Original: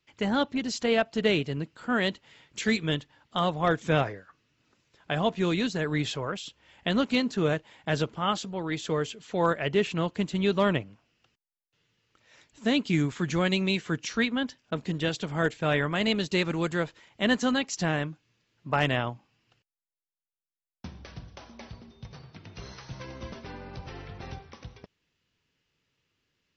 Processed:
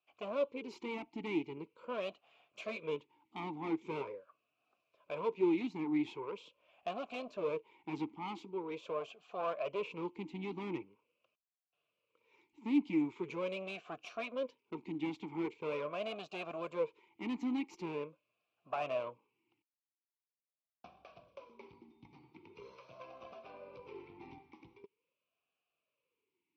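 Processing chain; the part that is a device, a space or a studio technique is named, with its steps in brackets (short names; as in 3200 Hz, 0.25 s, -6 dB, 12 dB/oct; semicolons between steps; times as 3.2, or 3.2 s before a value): talk box (tube stage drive 27 dB, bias 0.6; vowel sweep a-u 0.43 Hz); gain +6 dB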